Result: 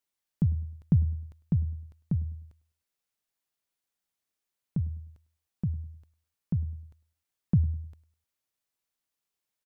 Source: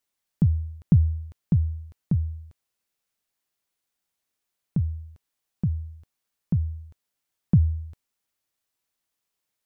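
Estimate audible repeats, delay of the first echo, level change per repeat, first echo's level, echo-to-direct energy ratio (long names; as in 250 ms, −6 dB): 2, 102 ms, −9.5 dB, −20.5 dB, −20.0 dB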